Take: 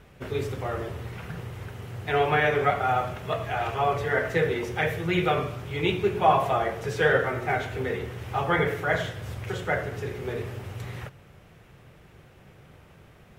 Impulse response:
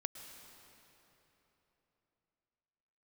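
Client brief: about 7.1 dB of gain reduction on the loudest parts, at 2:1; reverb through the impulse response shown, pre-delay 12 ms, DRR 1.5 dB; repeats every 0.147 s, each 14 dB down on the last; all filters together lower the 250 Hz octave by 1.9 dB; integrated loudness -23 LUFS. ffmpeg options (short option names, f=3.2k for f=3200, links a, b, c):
-filter_complex "[0:a]equalizer=f=250:t=o:g=-3.5,acompressor=threshold=-27dB:ratio=2,aecho=1:1:147|294:0.2|0.0399,asplit=2[a][b];[1:a]atrim=start_sample=2205,adelay=12[c];[b][c]afir=irnorm=-1:irlink=0,volume=0dB[d];[a][d]amix=inputs=2:normalize=0,volume=5.5dB"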